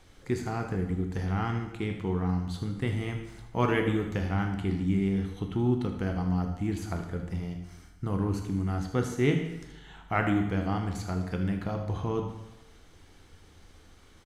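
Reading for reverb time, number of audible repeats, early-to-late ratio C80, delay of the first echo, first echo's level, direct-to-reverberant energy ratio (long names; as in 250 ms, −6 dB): 1.0 s, 1, 9.0 dB, 77 ms, −13.0 dB, 4.0 dB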